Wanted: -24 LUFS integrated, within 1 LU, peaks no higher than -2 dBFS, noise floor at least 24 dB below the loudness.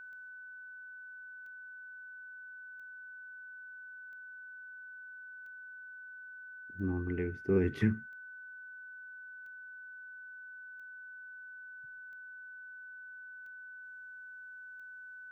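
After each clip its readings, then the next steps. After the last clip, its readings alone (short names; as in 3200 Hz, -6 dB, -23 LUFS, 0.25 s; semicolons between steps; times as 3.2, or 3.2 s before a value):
clicks 12; steady tone 1500 Hz; tone level -46 dBFS; loudness -42.0 LUFS; peak -17.0 dBFS; loudness target -24.0 LUFS
-> de-click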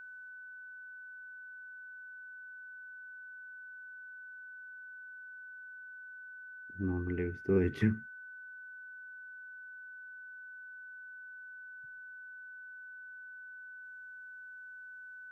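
clicks 0; steady tone 1500 Hz; tone level -46 dBFS
-> notch 1500 Hz, Q 30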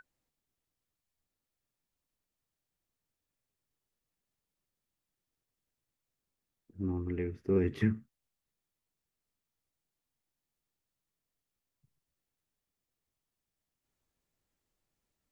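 steady tone none; loudness -33.5 LUFS; peak -16.5 dBFS; loudness target -24.0 LUFS
-> gain +9.5 dB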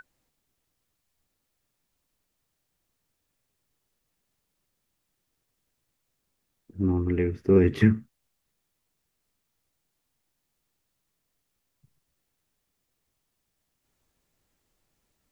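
loudness -24.0 LUFS; peak -7.0 dBFS; noise floor -79 dBFS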